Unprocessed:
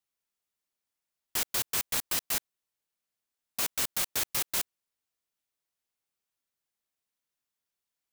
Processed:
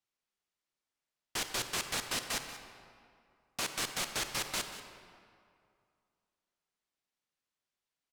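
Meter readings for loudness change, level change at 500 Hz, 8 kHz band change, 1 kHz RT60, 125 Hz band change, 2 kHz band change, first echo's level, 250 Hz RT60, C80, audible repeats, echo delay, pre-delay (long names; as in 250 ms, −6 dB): −6.0 dB, +1.0 dB, −5.0 dB, 2.4 s, 0.0 dB, +0.5 dB, −14.5 dB, 2.3 s, 7.5 dB, 1, 185 ms, 31 ms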